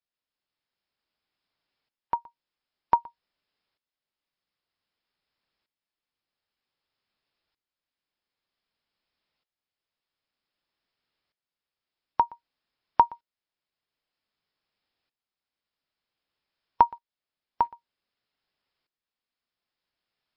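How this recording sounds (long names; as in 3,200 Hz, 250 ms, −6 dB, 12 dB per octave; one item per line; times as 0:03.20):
tremolo saw up 0.53 Hz, depth 80%
MP3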